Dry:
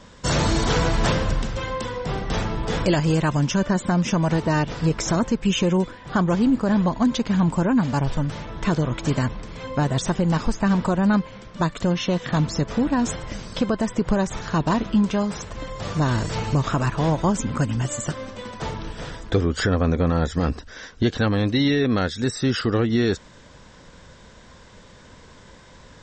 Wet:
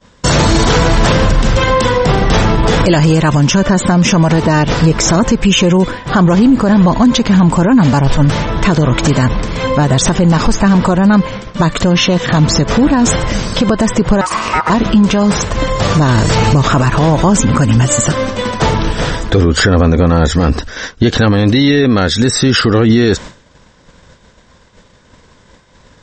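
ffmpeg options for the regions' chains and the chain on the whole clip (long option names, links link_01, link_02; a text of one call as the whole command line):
ffmpeg -i in.wav -filter_complex "[0:a]asettb=1/sr,asplit=3[link_01][link_02][link_03];[link_01]atrim=end=14.214[link_04];[link_02]atrim=start=14.21:end=14.7,asetpts=PTS-STARTPTS,afade=type=in:duration=0.004:curve=qsin,afade=type=out:start_time=0.486:duration=0.004:curve=qsin,acompressor=threshold=-27dB:ratio=2:attack=3.2:release=140:knee=1:detection=peak,aeval=exprs='val(0)*sin(2*PI*1100*n/s)':channel_layout=same[link_05];[link_03]atrim=start=14.696[link_06];[link_04][link_05]acrossfade=duration=0.004:curve1=hsin:curve2=qsin[link_07];[link_07][link_06]acrossfade=duration=0.004:curve1=qsin:curve2=hsin,agate=range=-33dB:threshold=-35dB:ratio=3:detection=peak,alimiter=level_in=19dB:limit=-1dB:release=50:level=0:latency=1,volume=-1dB" out.wav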